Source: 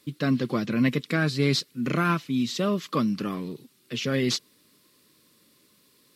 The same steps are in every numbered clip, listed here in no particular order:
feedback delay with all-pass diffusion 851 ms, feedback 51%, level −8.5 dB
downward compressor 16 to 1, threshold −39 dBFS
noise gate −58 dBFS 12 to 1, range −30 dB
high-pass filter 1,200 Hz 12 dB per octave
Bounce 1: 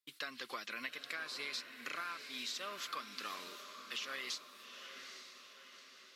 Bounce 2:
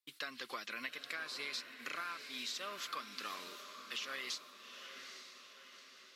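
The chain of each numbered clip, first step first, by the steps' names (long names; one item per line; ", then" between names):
high-pass filter, then noise gate, then downward compressor, then feedback delay with all-pass diffusion
high-pass filter, then downward compressor, then noise gate, then feedback delay with all-pass diffusion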